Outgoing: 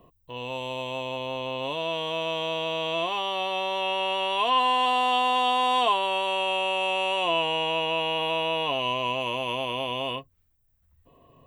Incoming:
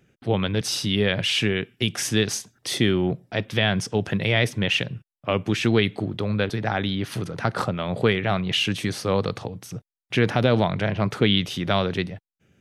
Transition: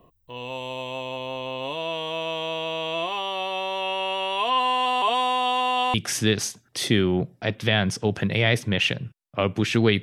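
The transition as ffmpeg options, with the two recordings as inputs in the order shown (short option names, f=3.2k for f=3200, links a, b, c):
-filter_complex "[0:a]apad=whole_dur=10.02,atrim=end=10.02,asplit=2[a][b];[a]atrim=end=5.022[c];[b]atrim=start=5.018:end=5.942,asetpts=PTS-STARTPTS,areverse[d];[1:a]atrim=start=1.838:end=5.92[e];[c][d]acrossfade=d=0.004:c1=hsin:c2=hsin[f];[f][e]acrossfade=d=0.004:c1=hsin:c2=hsin"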